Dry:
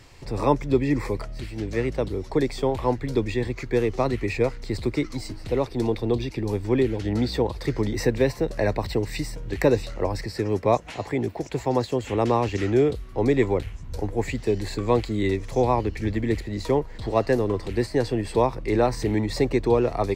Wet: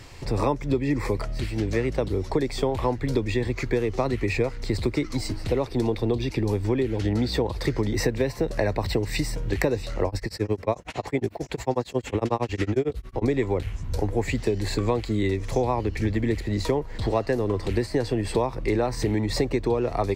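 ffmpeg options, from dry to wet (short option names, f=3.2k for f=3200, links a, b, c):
-filter_complex "[0:a]asettb=1/sr,asplit=3[a][b][c];[a]atrim=end=10.074[d];[b]atrim=start=10.07:end=13.28,asetpts=PTS-STARTPTS,afade=t=in:d=0.004:c=qsin,afade=t=out:st=3.206:d=0.004:c=qsin,tremolo=f=11:d=0.99[e];[c]atrim=start=13.276[f];[d][e]acrossfade=d=0.004:c1=hsin:c2=qsin[g];[g][f]acrossfade=d=0.004:c1=qsin:c2=hsin,equalizer=f=94:w=4.4:g=3,acompressor=threshold=-25dB:ratio=6,volume=5dB"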